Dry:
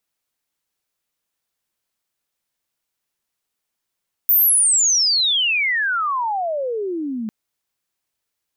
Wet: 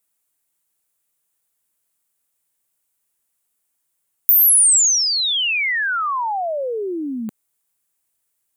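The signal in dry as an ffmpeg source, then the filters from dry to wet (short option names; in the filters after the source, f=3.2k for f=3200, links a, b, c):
-f lavfi -i "aevalsrc='pow(10,(-11-12*t/3)/20)*sin(2*PI*15000*3/log(210/15000)*(exp(log(210/15000)*t/3)-1))':d=3:s=44100"
-filter_complex "[0:a]highshelf=f=6.7k:t=q:w=1.5:g=8,acrossover=split=260[a][b];[b]acompressor=threshold=-12dB:ratio=5[c];[a][c]amix=inputs=2:normalize=0"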